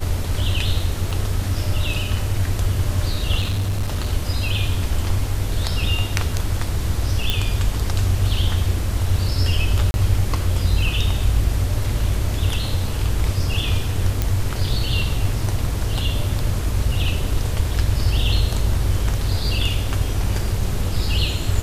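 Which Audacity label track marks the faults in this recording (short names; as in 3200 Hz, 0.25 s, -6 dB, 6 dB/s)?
1.110000	1.110000	gap 4 ms
3.390000	4.090000	clipped -17.5 dBFS
7.300000	7.300000	pop -5 dBFS
9.910000	9.940000	gap 31 ms
14.220000	14.220000	pop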